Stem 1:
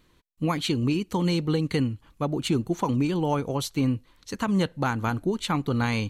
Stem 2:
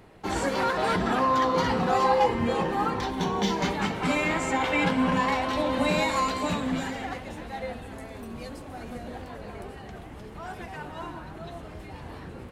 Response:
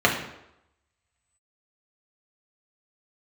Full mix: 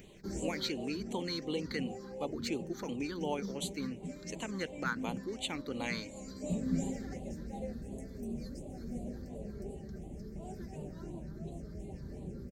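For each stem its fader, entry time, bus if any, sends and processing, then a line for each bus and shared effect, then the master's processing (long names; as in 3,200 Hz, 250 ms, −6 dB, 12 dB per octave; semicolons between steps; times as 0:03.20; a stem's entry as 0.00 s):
−4.0 dB, 0.00 s, no send, high-pass filter 430 Hz 12 dB per octave; upward compression, threshold −44 dBFS
−2.0 dB, 0.00 s, no send, flat-topped bell 1,900 Hz −15.5 dB 2.4 octaves; comb filter 5.1 ms, depth 45%; automatic ducking −13 dB, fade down 0.90 s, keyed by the first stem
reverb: not used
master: all-pass phaser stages 6, 2.8 Hz, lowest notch 710–1,500 Hz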